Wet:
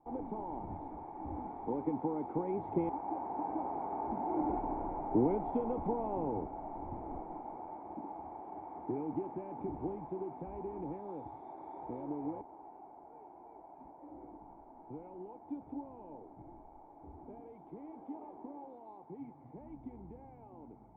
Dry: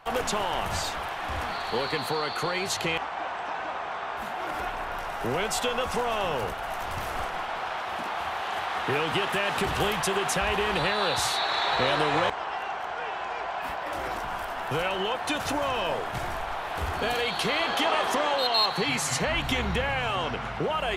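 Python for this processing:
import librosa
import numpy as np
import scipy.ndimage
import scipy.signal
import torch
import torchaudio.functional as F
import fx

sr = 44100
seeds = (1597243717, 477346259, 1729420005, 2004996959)

y = fx.doppler_pass(x, sr, speed_mps=11, closest_m=14.0, pass_at_s=4.22)
y = fx.formant_cascade(y, sr, vowel='u')
y = y * 10.0 ** (12.5 / 20.0)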